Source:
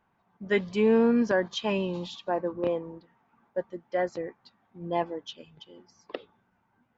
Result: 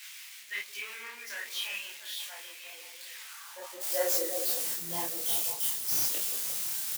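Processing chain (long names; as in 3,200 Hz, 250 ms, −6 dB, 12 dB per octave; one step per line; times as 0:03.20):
spike at every zero crossing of −26 dBFS
high-shelf EQ 3,200 Hz +7.5 dB
mains-hum notches 60/120/180/240 Hz
double-tracking delay 30 ms −3 dB
transient designer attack −3 dB, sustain +2 dB
spectral tilt −2 dB per octave, from 0:03.80 +3 dB per octave
hard clipping −15.5 dBFS, distortion −11 dB
high-pass filter sweep 2,200 Hz → 130 Hz, 0:03.07–0:04.87
echo through a band-pass that steps 175 ms, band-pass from 360 Hz, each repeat 0.7 octaves, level −3.5 dB
micro pitch shift up and down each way 44 cents
level −4.5 dB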